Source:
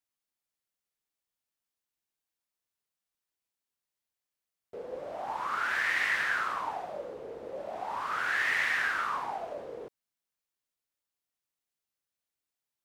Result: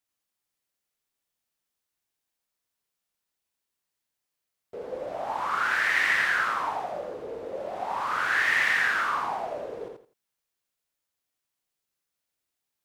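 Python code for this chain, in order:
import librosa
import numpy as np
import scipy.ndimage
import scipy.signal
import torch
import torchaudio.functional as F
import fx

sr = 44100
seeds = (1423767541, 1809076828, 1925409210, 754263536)

y = fx.echo_feedback(x, sr, ms=84, feedback_pct=23, wet_db=-4.0)
y = F.gain(torch.from_numpy(y), 3.5).numpy()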